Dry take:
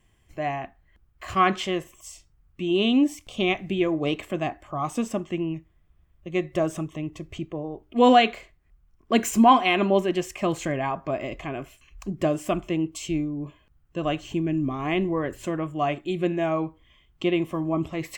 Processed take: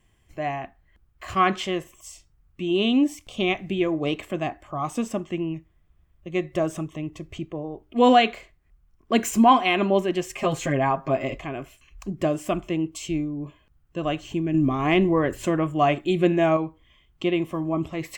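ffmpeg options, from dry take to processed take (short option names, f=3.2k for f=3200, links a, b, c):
-filter_complex "[0:a]asettb=1/sr,asplit=3[a][b][c];[a]atrim=end=10.294[d];[b]atrim=start=10.29:end=11.38,asetpts=PTS-STARTPTS,afade=t=in:d=0.004:c=qsin,afade=t=out:st=1.086:d=0.004:c=qsin,aecho=1:1:7.5:0.95,atrim=end_sample=48069[e];[c]atrim=start=11.376[f];[d][e]acrossfade=d=0.004:c1=hsin:c2=qsin[g];[g][f]acrossfade=d=0.004:c1=qsin:c2=hsin,asettb=1/sr,asplit=3[h][i][j];[h]atrim=end=14.544[k];[i]atrim=start=14.54:end=16.57,asetpts=PTS-STARTPTS,afade=t=in:d=0.004:c=qsin,afade=t=out:st=2.026:d=0.004:c=qsin,acontrast=31[l];[j]atrim=start=16.566[m];[k][l]acrossfade=d=0.004:c1=hsin:c2=qsin[n];[n][m]acrossfade=d=0.004:c1=qsin:c2=hsin"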